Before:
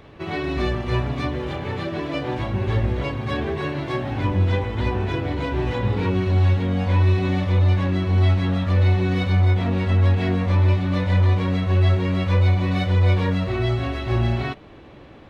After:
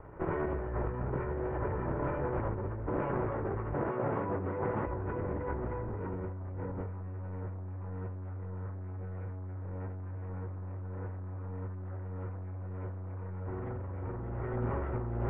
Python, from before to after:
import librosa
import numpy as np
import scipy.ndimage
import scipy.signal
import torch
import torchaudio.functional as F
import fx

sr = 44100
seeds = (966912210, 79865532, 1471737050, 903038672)

y = fx.lower_of_two(x, sr, delay_ms=2.1)
y = fx.highpass(y, sr, hz=160.0, slope=12, at=(2.86, 4.86), fade=0.02)
y = y + 10.0 ** (-4.0 / 20.0) * np.pad(y, (int(868 * sr / 1000.0), 0))[:len(y)]
y = np.clip(10.0 ** (18.0 / 20.0) * y, -1.0, 1.0) / 10.0 ** (18.0 / 20.0)
y = fx.over_compress(y, sr, threshold_db=-29.0, ratio=-1.0)
y = scipy.signal.sosfilt(scipy.signal.cheby2(4, 50, 3900.0, 'lowpass', fs=sr, output='sos'), y)
y = fx.doppler_dist(y, sr, depth_ms=0.22)
y = F.gain(torch.from_numpy(y), -7.5).numpy()